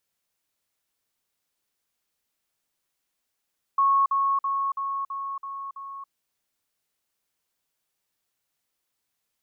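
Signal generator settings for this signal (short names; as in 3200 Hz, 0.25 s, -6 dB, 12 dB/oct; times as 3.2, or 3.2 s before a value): level ladder 1100 Hz -17 dBFS, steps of -3 dB, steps 7, 0.28 s 0.05 s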